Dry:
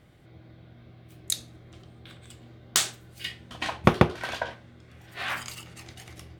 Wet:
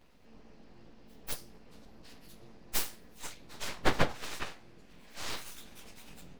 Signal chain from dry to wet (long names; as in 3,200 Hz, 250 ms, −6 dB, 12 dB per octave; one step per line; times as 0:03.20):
partials spread apart or drawn together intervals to 110%
full-wave rectification